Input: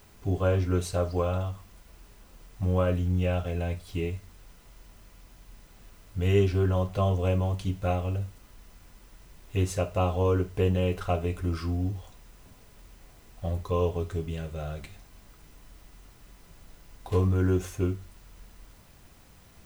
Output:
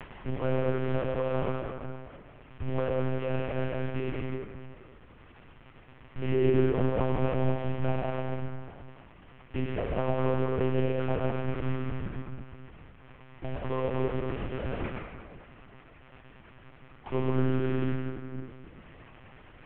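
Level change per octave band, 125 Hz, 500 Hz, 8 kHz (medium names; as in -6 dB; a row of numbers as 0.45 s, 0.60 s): -4.5 dB, -0.5 dB, under -30 dB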